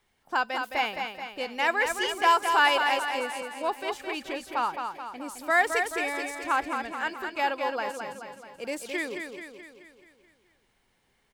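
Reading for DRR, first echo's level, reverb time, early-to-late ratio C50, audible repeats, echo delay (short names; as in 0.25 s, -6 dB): none, -6.0 dB, none, none, 6, 0.215 s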